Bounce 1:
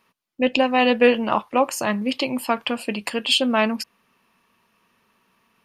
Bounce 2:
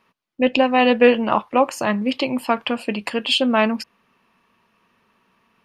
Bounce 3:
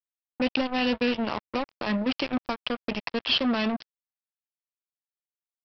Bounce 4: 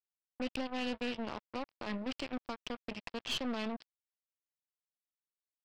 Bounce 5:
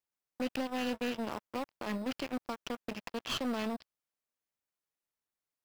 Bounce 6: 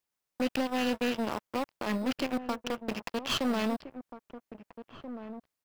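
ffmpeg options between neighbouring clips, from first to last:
-af "highshelf=f=5.9k:g=-11.5,volume=2.5dB"
-filter_complex "[0:a]acrossover=split=250|3000[a][b][c];[b]acompressor=threshold=-28dB:ratio=4[d];[a][d][c]amix=inputs=3:normalize=0,aresample=11025,acrusher=bits=3:mix=0:aa=0.5,aresample=44100,volume=-3dB"
-af "aeval=exprs='(tanh(10*val(0)+0.65)-tanh(0.65))/10':c=same,volume=-8.5dB"
-filter_complex "[0:a]lowshelf=f=72:g=-8.5,asplit=2[a][b];[b]acrusher=samples=10:mix=1:aa=0.000001,volume=-6.5dB[c];[a][c]amix=inputs=2:normalize=0"
-filter_complex "[0:a]asplit=2[a][b];[b]adelay=1633,volume=-11dB,highshelf=f=4k:g=-36.7[c];[a][c]amix=inputs=2:normalize=0,volume=5dB"

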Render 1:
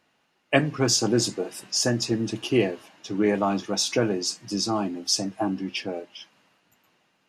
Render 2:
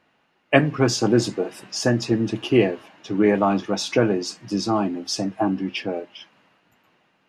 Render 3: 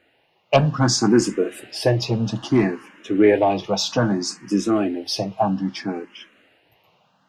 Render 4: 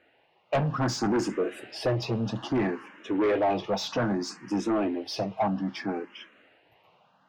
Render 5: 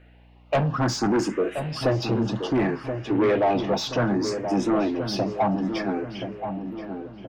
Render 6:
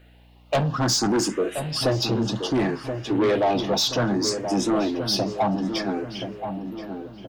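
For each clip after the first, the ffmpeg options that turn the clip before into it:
-af "bass=f=250:g=0,treble=f=4k:g=-11,volume=4.5dB"
-filter_complex "[0:a]asoftclip=type=tanh:threshold=-7.5dB,asplit=2[a][b];[b]afreqshift=0.62[c];[a][c]amix=inputs=2:normalize=1,volume=5.5dB"
-filter_complex "[0:a]asoftclip=type=tanh:threshold=-17.5dB,asplit=2[a][b];[b]highpass=f=720:p=1,volume=5dB,asoftclip=type=tanh:threshold=-17.5dB[c];[a][c]amix=inputs=2:normalize=0,lowpass=f=1.5k:p=1,volume=-6dB"
-filter_complex "[0:a]aeval=exprs='val(0)+0.00178*(sin(2*PI*60*n/s)+sin(2*PI*2*60*n/s)/2+sin(2*PI*3*60*n/s)/3+sin(2*PI*4*60*n/s)/4+sin(2*PI*5*60*n/s)/5)':c=same,asplit=2[a][b];[b]adelay=1027,lowpass=f=1.1k:p=1,volume=-7dB,asplit=2[c][d];[d]adelay=1027,lowpass=f=1.1k:p=1,volume=0.52,asplit=2[e][f];[f]adelay=1027,lowpass=f=1.1k:p=1,volume=0.52,asplit=2[g][h];[h]adelay=1027,lowpass=f=1.1k:p=1,volume=0.52,asplit=2[i][j];[j]adelay=1027,lowpass=f=1.1k:p=1,volume=0.52,asplit=2[k][l];[l]adelay=1027,lowpass=f=1.1k:p=1,volume=0.52[m];[a][c][e][g][i][k][m]amix=inputs=7:normalize=0,volume=3.5dB"
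-af "aexciter=amount=3.4:drive=3.5:freq=3.3k"

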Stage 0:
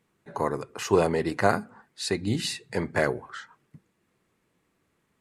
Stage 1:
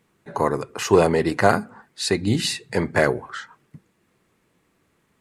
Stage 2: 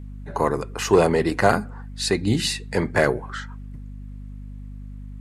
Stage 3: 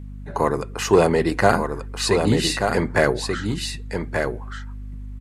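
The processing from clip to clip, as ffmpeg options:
-af "acontrast=30,volume=1dB"
-filter_complex "[0:a]aeval=exprs='val(0)+0.0178*(sin(2*PI*50*n/s)+sin(2*PI*2*50*n/s)/2+sin(2*PI*3*50*n/s)/3+sin(2*PI*4*50*n/s)/4+sin(2*PI*5*50*n/s)/5)':c=same,asplit=2[a][b];[b]asoftclip=type=tanh:threshold=-10dB,volume=-7.5dB[c];[a][c]amix=inputs=2:normalize=0,volume=-3dB"
-af "aecho=1:1:1183:0.531,volume=1dB"

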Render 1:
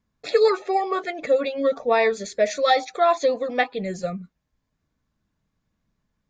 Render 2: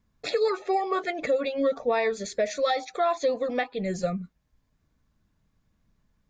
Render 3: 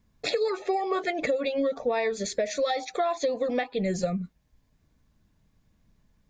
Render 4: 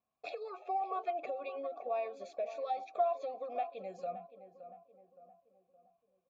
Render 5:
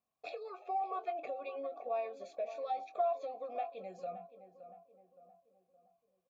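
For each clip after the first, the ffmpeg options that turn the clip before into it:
-af "lowshelf=f=83:g=7,alimiter=limit=-18dB:level=0:latency=1:release=490,volume=2dB"
-af "equalizer=f=1.3k:w=2.5:g=-4.5,acompressor=threshold=-27dB:ratio=6,volume=4dB"
-filter_complex "[0:a]asplit=3[a][b][c];[a]bandpass=f=730:t=q:w=8,volume=0dB[d];[b]bandpass=f=1.09k:t=q:w=8,volume=-6dB[e];[c]bandpass=f=2.44k:t=q:w=8,volume=-9dB[f];[d][e][f]amix=inputs=3:normalize=0,asplit=2[g][h];[h]adelay=568,lowpass=f=1.3k:p=1,volume=-11.5dB,asplit=2[i][j];[j]adelay=568,lowpass=f=1.3k:p=1,volume=0.47,asplit=2[k][l];[l]adelay=568,lowpass=f=1.3k:p=1,volume=0.47,asplit=2[m][n];[n]adelay=568,lowpass=f=1.3k:p=1,volume=0.47,asplit=2[o][p];[p]adelay=568,lowpass=f=1.3k:p=1,volume=0.47[q];[g][i][k][m][o][q]amix=inputs=6:normalize=0,volume=-1.5dB"
-filter_complex "[0:a]asplit=2[a][b];[b]adelay=22,volume=-11.5dB[c];[a][c]amix=inputs=2:normalize=0,volume=-2dB"

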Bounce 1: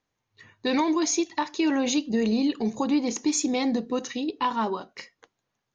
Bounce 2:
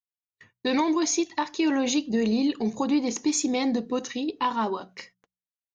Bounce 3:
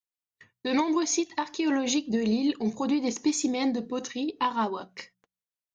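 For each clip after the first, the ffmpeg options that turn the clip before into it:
-af "agate=range=-38dB:threshold=-50dB:ratio=16:detection=peak,bandreject=f=61.35:t=h:w=4,bandreject=f=122.7:t=h:w=4,bandreject=f=184.05:t=h:w=4"
-af "tremolo=f=5.2:d=0.41"

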